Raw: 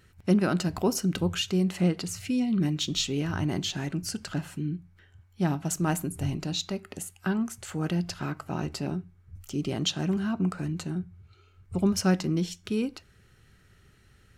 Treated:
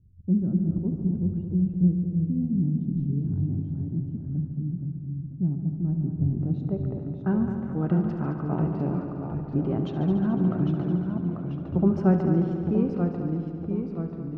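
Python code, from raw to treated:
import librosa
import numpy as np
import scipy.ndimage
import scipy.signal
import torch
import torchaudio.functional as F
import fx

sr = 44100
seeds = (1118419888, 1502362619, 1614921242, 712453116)

p1 = fx.env_lowpass(x, sr, base_hz=350.0, full_db=-25.5)
p2 = fx.low_shelf(p1, sr, hz=480.0, db=3.5)
p3 = fx.filter_sweep_lowpass(p2, sr, from_hz=170.0, to_hz=1000.0, start_s=5.92, end_s=7.08, q=0.86)
p4 = fx.echo_pitch(p3, sr, ms=217, semitones=-1, count=2, db_per_echo=-6.0)
y = p4 + fx.echo_heads(p4, sr, ms=72, heads='all three', feedback_pct=64, wet_db=-12.5, dry=0)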